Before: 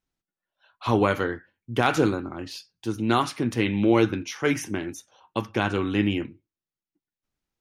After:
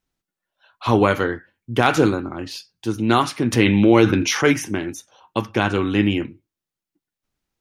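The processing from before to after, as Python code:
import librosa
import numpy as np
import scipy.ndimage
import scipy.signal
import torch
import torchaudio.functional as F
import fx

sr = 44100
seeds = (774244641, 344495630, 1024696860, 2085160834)

y = fx.env_flatten(x, sr, amount_pct=50, at=(3.52, 4.51), fade=0.02)
y = F.gain(torch.from_numpy(y), 5.0).numpy()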